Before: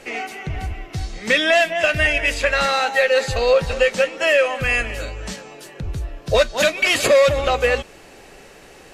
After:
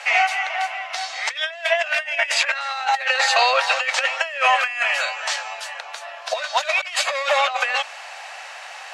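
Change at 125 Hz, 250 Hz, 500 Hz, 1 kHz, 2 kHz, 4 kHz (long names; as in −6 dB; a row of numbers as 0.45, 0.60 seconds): below −40 dB, below −35 dB, −10.0 dB, +4.0 dB, −0.5 dB, +1.0 dB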